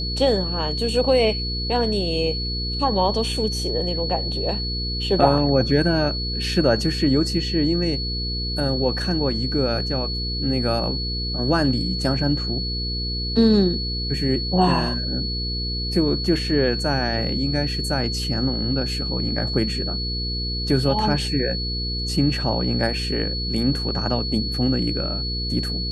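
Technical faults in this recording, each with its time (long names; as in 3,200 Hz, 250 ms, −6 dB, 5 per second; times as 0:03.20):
mains hum 60 Hz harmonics 8 −28 dBFS
whistle 4,400 Hz −27 dBFS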